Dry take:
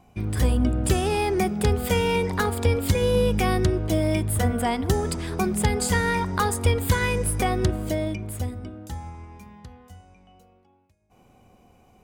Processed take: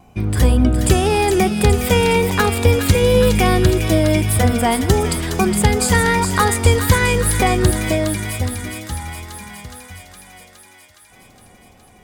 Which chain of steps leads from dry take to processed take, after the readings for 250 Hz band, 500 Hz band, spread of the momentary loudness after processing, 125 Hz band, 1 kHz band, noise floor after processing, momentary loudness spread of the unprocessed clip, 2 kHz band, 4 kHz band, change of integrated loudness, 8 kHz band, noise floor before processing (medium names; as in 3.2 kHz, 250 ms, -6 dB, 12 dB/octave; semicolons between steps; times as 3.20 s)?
+7.5 dB, +7.5 dB, 13 LU, +7.5 dB, +7.5 dB, -48 dBFS, 9 LU, +8.5 dB, +9.0 dB, +7.5 dB, +9.5 dB, -58 dBFS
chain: feedback echo behind a high-pass 415 ms, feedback 71%, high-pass 1.7 kHz, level -6 dB; wow and flutter 22 cents; trim +7.5 dB